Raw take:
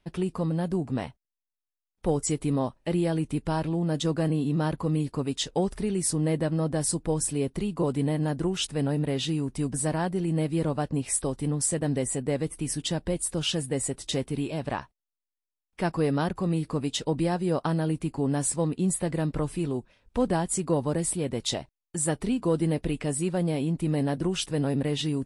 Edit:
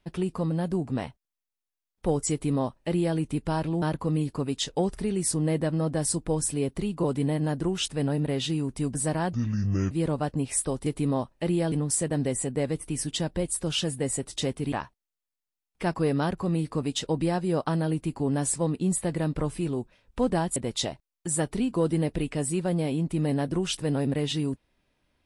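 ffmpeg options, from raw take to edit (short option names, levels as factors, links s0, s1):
-filter_complex "[0:a]asplit=8[s0][s1][s2][s3][s4][s5][s6][s7];[s0]atrim=end=3.822[s8];[s1]atrim=start=4.608:end=10.124[s9];[s2]atrim=start=10.12:end=10.48,asetpts=PTS-STARTPTS,asetrate=27342,aresample=44100,atrim=end_sample=25606,asetpts=PTS-STARTPTS[s10];[s3]atrim=start=10.476:end=11.432[s11];[s4]atrim=start=2.308:end=3.172[s12];[s5]atrim=start=11.428:end=14.432[s13];[s6]atrim=start=14.698:end=20.542[s14];[s7]atrim=start=21.248[s15];[s8][s9]acrossfade=d=0.004:c1=hsin:c2=hsin[s16];[s16][s10]acrossfade=d=0.004:c1=hsin:c2=hsin[s17];[s17][s11]acrossfade=d=0.004:c1=hsin:c2=hsin[s18];[s18][s12]acrossfade=d=0.004:c1=hsin:c2=hsin[s19];[s19][s13]acrossfade=d=0.004:c1=hsin:c2=hsin[s20];[s20][s14]acrossfade=d=0.004:c1=hsin:c2=hsin[s21];[s21][s15]acrossfade=d=0.004:c1=hsin:c2=hsin"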